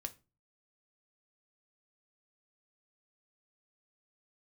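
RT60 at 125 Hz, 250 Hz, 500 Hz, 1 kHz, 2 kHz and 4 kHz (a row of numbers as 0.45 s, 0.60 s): 0.55 s, 0.45 s, 0.30 s, 0.30 s, 0.25 s, 0.25 s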